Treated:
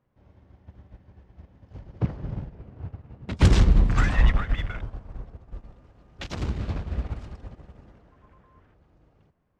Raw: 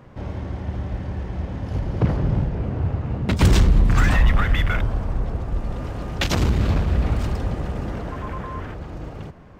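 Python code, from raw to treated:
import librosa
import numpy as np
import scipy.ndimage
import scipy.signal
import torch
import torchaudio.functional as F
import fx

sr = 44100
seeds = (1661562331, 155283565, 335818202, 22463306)

y = scipy.signal.sosfilt(scipy.signal.butter(2, 7400.0, 'lowpass', fs=sr, output='sos'), x)
y = fx.upward_expand(y, sr, threshold_db=-29.0, expansion=2.5)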